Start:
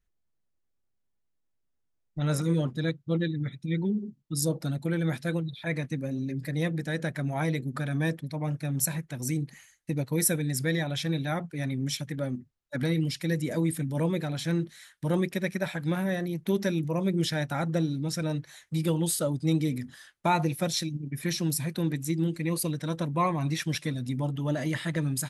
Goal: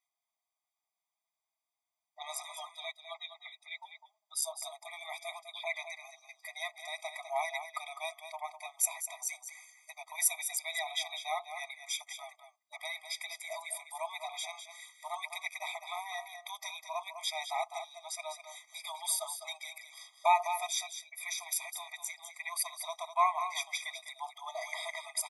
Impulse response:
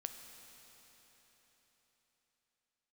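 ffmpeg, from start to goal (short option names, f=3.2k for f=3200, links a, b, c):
-filter_complex "[0:a]asplit=2[a][b];[b]acompressor=threshold=-40dB:ratio=6,volume=-3dB[c];[a][c]amix=inputs=2:normalize=0,aecho=1:1:203:0.335,afftfilt=real='re*eq(mod(floor(b*sr/1024/640),2),1)':imag='im*eq(mod(floor(b*sr/1024/640),2),1)':win_size=1024:overlap=0.75"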